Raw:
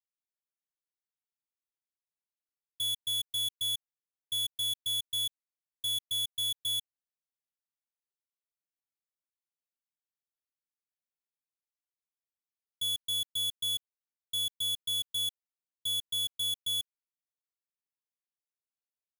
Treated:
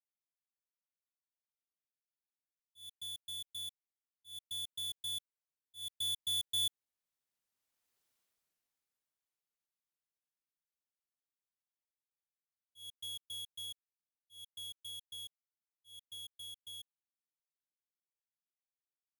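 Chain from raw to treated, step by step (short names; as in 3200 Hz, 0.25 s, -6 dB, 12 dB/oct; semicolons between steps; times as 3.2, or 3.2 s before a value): Doppler pass-by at 8.07, 6 m/s, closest 1.6 m; auto swell 0.217 s; gain +13.5 dB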